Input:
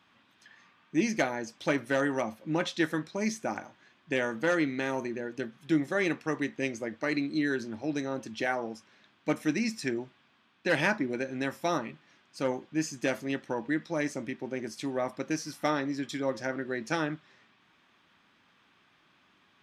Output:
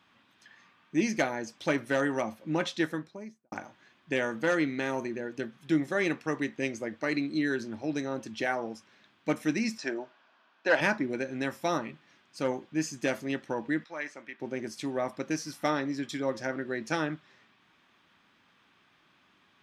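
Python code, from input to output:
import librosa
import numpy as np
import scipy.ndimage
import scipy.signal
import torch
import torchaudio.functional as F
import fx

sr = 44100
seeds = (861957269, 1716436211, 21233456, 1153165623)

y = fx.studio_fade_out(x, sr, start_s=2.67, length_s=0.85)
y = fx.cabinet(y, sr, low_hz=340.0, low_slope=12, high_hz=6500.0, hz=(630.0, 940.0, 1500.0, 2100.0, 3600.0), db=(9, 5, 6, -4, -3), at=(9.77, 10.8), fade=0.02)
y = fx.bandpass_q(y, sr, hz=1700.0, q=0.94, at=(13.84, 14.4))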